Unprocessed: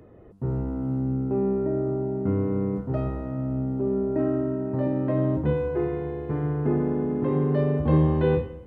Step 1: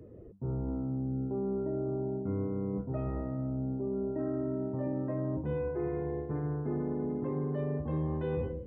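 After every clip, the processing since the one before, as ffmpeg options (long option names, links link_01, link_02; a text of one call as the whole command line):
ffmpeg -i in.wav -af "afftdn=noise_reduction=14:noise_floor=-45,areverse,acompressor=threshold=-33dB:ratio=5,areverse,volume=1.5dB" out.wav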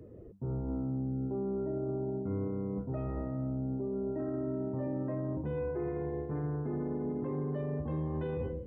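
ffmpeg -i in.wav -af "alimiter=level_in=4dB:limit=-24dB:level=0:latency=1:release=11,volume=-4dB" out.wav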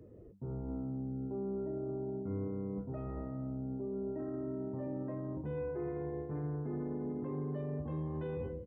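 ffmpeg -i in.wav -filter_complex "[0:a]asplit=2[link_01][link_02];[link_02]adelay=20,volume=-13.5dB[link_03];[link_01][link_03]amix=inputs=2:normalize=0,volume=-4.5dB" out.wav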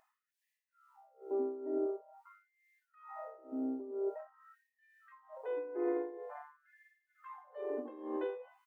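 ffmpeg -i in.wav -af "tremolo=f=2.2:d=0.8,afftfilt=real='re*gte(b*sr/1024,220*pow(1700/220,0.5+0.5*sin(2*PI*0.47*pts/sr)))':imag='im*gte(b*sr/1024,220*pow(1700/220,0.5+0.5*sin(2*PI*0.47*pts/sr)))':win_size=1024:overlap=0.75,volume=7dB" out.wav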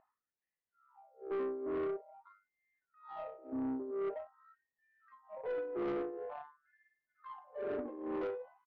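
ffmpeg -i in.wav -af "adynamicsmooth=sensitivity=4:basefreq=1100,aresample=16000,asoftclip=type=tanh:threshold=-37.5dB,aresample=44100,volume=4.5dB" out.wav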